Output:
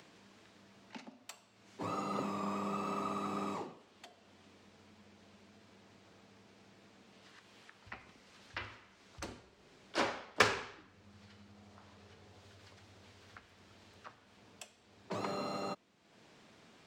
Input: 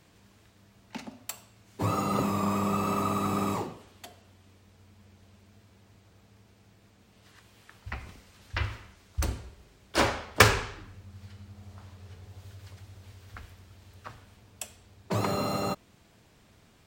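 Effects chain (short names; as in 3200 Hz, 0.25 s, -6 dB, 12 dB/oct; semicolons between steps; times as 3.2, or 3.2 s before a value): three-band isolator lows -19 dB, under 160 Hz, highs -17 dB, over 7400 Hz; upward compressor, threshold -42 dBFS; gain -8.5 dB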